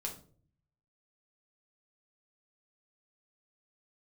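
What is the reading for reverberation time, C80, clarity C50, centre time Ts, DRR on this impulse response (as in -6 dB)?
0.45 s, 14.5 dB, 9.5 dB, 17 ms, -0.5 dB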